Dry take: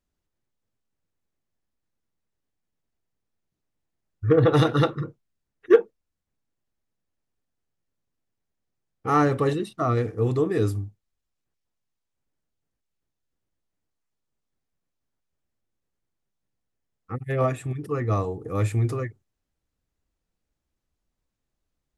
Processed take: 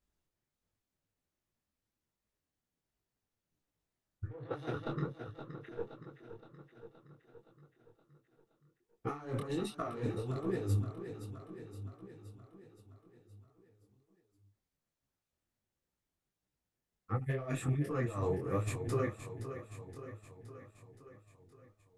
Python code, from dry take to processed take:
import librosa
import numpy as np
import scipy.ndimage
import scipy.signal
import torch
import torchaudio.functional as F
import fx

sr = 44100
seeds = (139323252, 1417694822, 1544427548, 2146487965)

p1 = fx.diode_clip(x, sr, knee_db=-16.0)
p2 = fx.highpass(p1, sr, hz=95.0, slope=12, at=(4.35, 4.81))
p3 = fx.over_compress(p2, sr, threshold_db=-28.0, ratio=-0.5)
p4 = p3 + fx.echo_feedback(p3, sr, ms=520, feedback_pct=60, wet_db=-10, dry=0)
p5 = fx.detune_double(p4, sr, cents=46)
y = F.gain(torch.from_numpy(p5), -3.5).numpy()